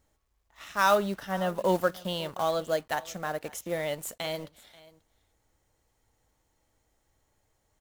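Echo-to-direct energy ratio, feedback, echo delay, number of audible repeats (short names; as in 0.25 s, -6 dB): -21.5 dB, no steady repeat, 0.535 s, 1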